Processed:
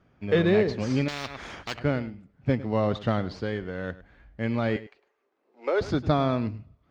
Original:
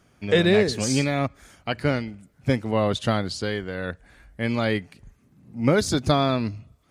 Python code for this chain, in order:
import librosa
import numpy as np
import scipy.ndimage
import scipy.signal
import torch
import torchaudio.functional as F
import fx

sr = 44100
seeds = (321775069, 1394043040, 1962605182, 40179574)

p1 = fx.block_float(x, sr, bits=7)
p2 = fx.wow_flutter(p1, sr, seeds[0], rate_hz=2.1, depth_cents=29.0)
p3 = fx.cheby1_bandpass(p2, sr, low_hz=390.0, high_hz=8600.0, order=4, at=(4.76, 5.81))
p4 = fx.sample_hold(p3, sr, seeds[1], rate_hz=4800.0, jitter_pct=0)
p5 = p3 + F.gain(torch.from_numpy(p4), -9.5).numpy()
p6 = fx.air_absorb(p5, sr, metres=220.0)
p7 = p6 + fx.echo_single(p6, sr, ms=103, db=-17.0, dry=0)
p8 = fx.spectral_comp(p7, sr, ratio=4.0, at=(1.08, 1.79))
y = F.gain(torch.from_numpy(p8), -4.5).numpy()